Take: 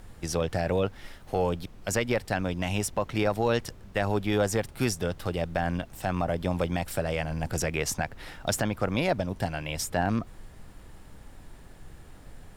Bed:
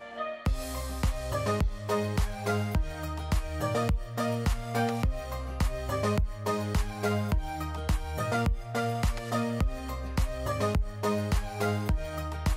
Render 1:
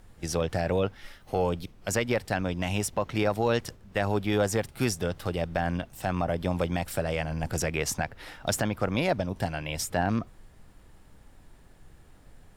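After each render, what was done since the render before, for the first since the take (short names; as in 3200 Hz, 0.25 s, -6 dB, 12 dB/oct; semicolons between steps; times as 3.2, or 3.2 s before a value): noise print and reduce 6 dB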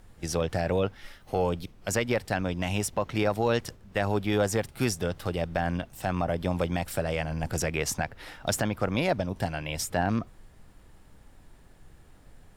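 nothing audible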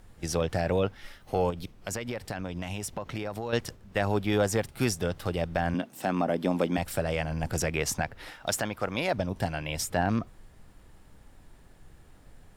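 1.5–3.53 compressor 10:1, threshold -29 dBFS; 5.74–6.78 resonant high-pass 240 Hz, resonance Q 2.1; 8.3–9.14 low shelf 330 Hz -8.5 dB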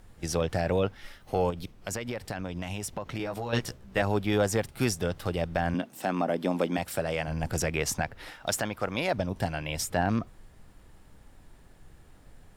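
3.18–4.02 doubler 16 ms -3.5 dB; 5.97–7.28 HPF 150 Hz 6 dB/oct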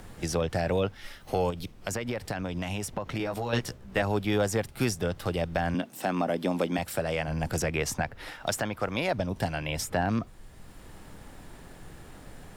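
three-band squash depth 40%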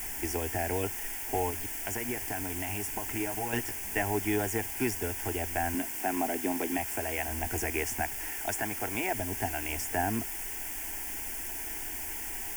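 requantised 6-bit, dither triangular; fixed phaser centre 810 Hz, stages 8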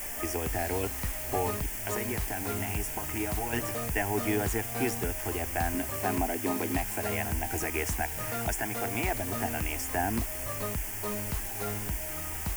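add bed -7.5 dB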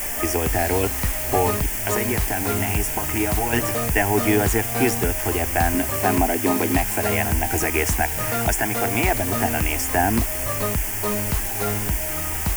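gain +10 dB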